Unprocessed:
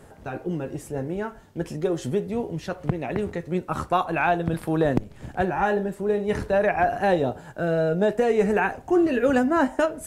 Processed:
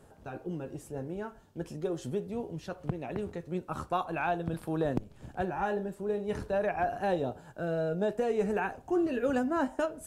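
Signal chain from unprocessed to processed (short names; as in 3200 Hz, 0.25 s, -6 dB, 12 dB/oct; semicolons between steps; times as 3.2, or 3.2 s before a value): bell 2000 Hz -6 dB 0.39 oct; gain -8.5 dB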